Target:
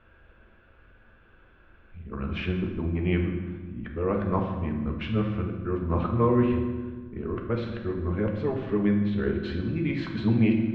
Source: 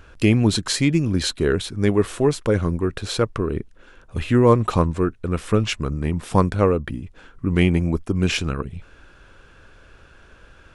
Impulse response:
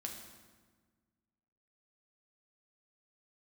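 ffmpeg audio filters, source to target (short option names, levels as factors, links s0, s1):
-filter_complex "[0:a]areverse,lowpass=f=2900:w=0.5412,lowpass=f=2900:w=1.3066[s0];[1:a]atrim=start_sample=2205[s1];[s0][s1]afir=irnorm=-1:irlink=0,volume=0.501"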